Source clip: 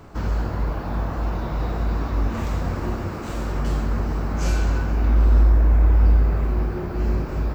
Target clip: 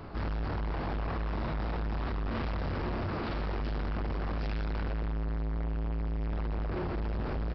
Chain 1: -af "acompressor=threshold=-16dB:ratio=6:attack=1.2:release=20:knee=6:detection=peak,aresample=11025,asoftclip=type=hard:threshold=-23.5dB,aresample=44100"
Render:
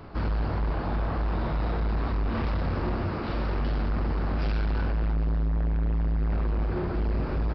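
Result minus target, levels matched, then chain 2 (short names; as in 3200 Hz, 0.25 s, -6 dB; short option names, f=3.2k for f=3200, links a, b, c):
hard clip: distortion -4 dB
-af "acompressor=threshold=-16dB:ratio=6:attack=1.2:release=20:knee=6:detection=peak,aresample=11025,asoftclip=type=hard:threshold=-31dB,aresample=44100"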